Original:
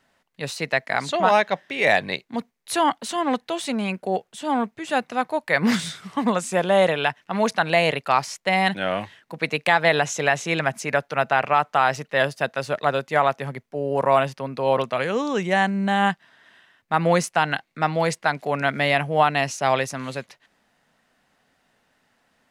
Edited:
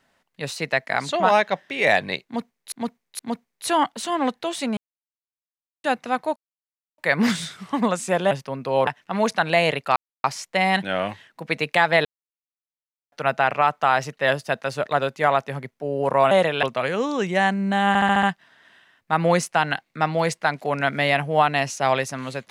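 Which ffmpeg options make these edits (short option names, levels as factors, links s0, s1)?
-filter_complex "[0:a]asplit=18[s0][s1][s2][s3][s4][s5][s6][s7][s8][s9][s10][s11][s12][s13][s14][s15][s16][s17];[s0]atrim=end=2.722[s18];[s1]atrim=start=2.248:end=2.722[s19];[s2]atrim=start=2.248:end=3.83,asetpts=PTS-STARTPTS,afade=t=out:st=1.578:d=0.004:c=hsin[s20];[s3]atrim=start=3.83:end=4.9,asetpts=PTS-STARTPTS,volume=0[s21];[s4]atrim=start=4.9:end=5.42,asetpts=PTS-STARTPTS,afade=t=in:d=0.004:c=hsin,afade=t=out:st=0.516:d=0.004:c=hsin,apad=pad_dur=0.62[s22];[s5]atrim=start=5.42:end=6.752,asetpts=PTS-STARTPTS,afade=t=in:d=0.004:c=hsin[s23];[s6]atrim=start=14.228:end=14.792[s24];[s7]atrim=start=7.068:end=8.16,asetpts=PTS-STARTPTS,afade=t=out:st=1.088:d=0.004:c=hsin,apad=pad_dur=0.28[s25];[s8]atrim=start=8.16:end=9.97,asetpts=PTS-STARTPTS,afade=t=in:d=0.004:c=hsin,afade=t=out:st=1.806:d=0.004:c=hsin[s26];[s9]atrim=start=9.97:end=11.04,asetpts=PTS-STARTPTS,volume=0[s27];[s10]atrim=start=11.04:end=14.232,asetpts=PTS-STARTPTS,afade=t=in:d=0.004:c=hsin[s28];[s11]atrim=start=6.748:end=7.072[s29];[s12]atrim=start=14.788:end=16.112[s30];[s13]atrim=start=16.038:end=16.112[s31];[s14]atrim=start=16.038:end=16.112[s32];[s15]atrim=start=16.038:end=16.112[s33];[s16]atrim=start=16.038:end=16.112[s34];[s17]atrim=start=16.038[s35];[s18][s19]acrossfade=d=0.004:c1=hsin:c2=hsin[s36];[s20][s21][s22][s23]concat=n=4:v=0:a=1[s37];[s36][s37]acrossfade=d=0.004:c1=hsin:c2=hsin[s38];[s38][s24]acrossfade=d=0.004:c1=hsin:c2=hsin[s39];[s25][s26][s27][s28]concat=n=4:v=0:a=1[s40];[s39][s40]acrossfade=d=0.004:c1=hsin:c2=hsin[s41];[s41][s29]acrossfade=d=0.004:c1=hsin:c2=hsin[s42];[s42][s30]acrossfade=d=0.004:c1=hsin:c2=hsin[s43];[s43][s31]acrossfade=d=0.004:c1=hsin:c2=hsin[s44];[s44][s32]acrossfade=d=0.004:c1=hsin:c2=hsin[s45];[s45][s33]acrossfade=d=0.004:c1=hsin:c2=hsin[s46];[s46][s34]acrossfade=d=0.004:c1=hsin:c2=hsin[s47];[s47][s35]acrossfade=d=0.004:c1=hsin:c2=hsin"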